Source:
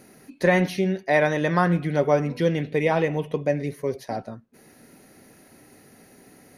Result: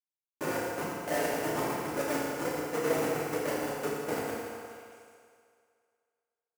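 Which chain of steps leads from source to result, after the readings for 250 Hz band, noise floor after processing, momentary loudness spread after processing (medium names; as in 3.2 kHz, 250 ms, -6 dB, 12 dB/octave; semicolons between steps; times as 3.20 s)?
-10.0 dB, under -85 dBFS, 10 LU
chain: phase randomisation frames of 50 ms; compression 16:1, threshold -32 dBFS, peak gain reduction 18.5 dB; peaking EQ 670 Hz +5 dB 1.2 oct; band-stop 740 Hz, Q 12; Chebyshev shaper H 7 -17 dB, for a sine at -19 dBFS; Schmitt trigger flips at -32 dBFS; high-pass 310 Hz 12 dB/octave; peaking EQ 3.7 kHz -10 dB 0.88 oct; on a send: repeats whose band climbs or falls 209 ms, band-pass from 400 Hz, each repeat 1.4 oct, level -9 dB; on the sum: FDN reverb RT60 2.2 s, low-frequency decay 0.8×, high-frequency decay 0.9×, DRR -7 dB; trim +8 dB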